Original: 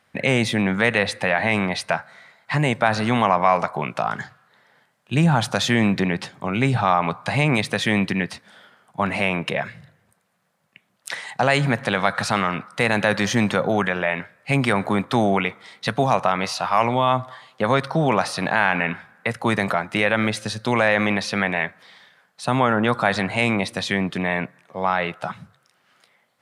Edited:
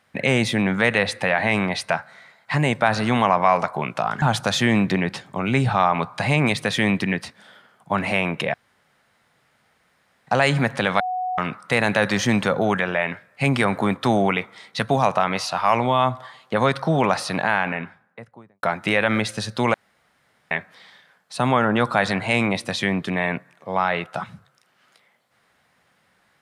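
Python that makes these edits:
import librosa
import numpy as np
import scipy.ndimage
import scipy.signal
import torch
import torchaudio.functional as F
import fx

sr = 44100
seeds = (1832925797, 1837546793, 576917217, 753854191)

y = fx.studio_fade_out(x, sr, start_s=18.32, length_s=1.39)
y = fx.edit(y, sr, fx.cut(start_s=4.22, length_s=1.08),
    fx.room_tone_fill(start_s=9.62, length_s=1.73),
    fx.bleep(start_s=12.08, length_s=0.38, hz=737.0, db=-22.5),
    fx.room_tone_fill(start_s=20.82, length_s=0.77), tone=tone)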